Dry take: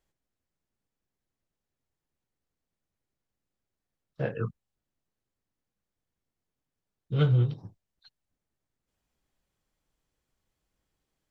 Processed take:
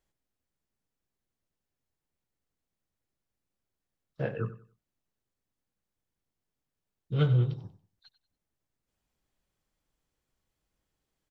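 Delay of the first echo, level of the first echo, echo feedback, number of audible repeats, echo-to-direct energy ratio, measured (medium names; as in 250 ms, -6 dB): 94 ms, -15.0 dB, 26%, 2, -14.5 dB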